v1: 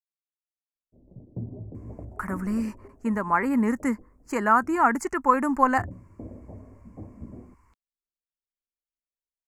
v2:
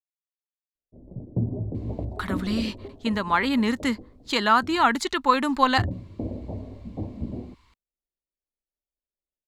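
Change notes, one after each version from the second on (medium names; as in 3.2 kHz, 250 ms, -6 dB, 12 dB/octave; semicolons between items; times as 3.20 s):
speech: remove Butterworth band-stop 3.6 kHz, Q 0.71; background +9.0 dB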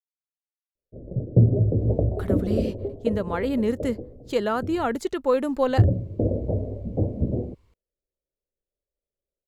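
background +6.5 dB; master: add ten-band graphic EQ 125 Hz +5 dB, 250 Hz -5 dB, 500 Hz +11 dB, 1 kHz -12 dB, 2 kHz -7 dB, 4 kHz -11 dB, 8 kHz -5 dB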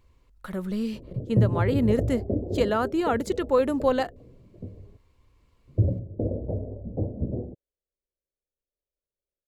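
speech: entry -1.75 s; background -4.5 dB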